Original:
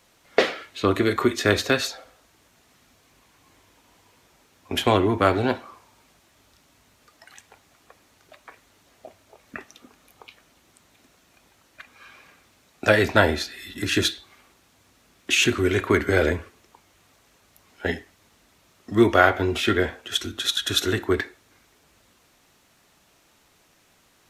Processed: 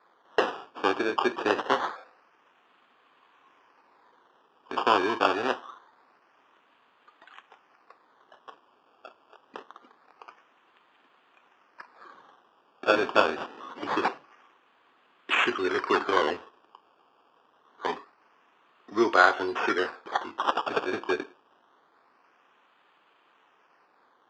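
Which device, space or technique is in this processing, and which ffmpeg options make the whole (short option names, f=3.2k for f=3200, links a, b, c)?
circuit-bent sampling toy: -af "acrusher=samples=15:mix=1:aa=0.000001:lfo=1:lforange=15:lforate=0.25,highpass=470,equalizer=f=610:t=q:w=4:g=-6,equalizer=f=1.1k:t=q:w=4:g=4,equalizer=f=2.1k:t=q:w=4:g=-7,equalizer=f=4k:t=q:w=4:g=-9,lowpass=f=4.2k:w=0.5412,lowpass=f=4.2k:w=1.3066"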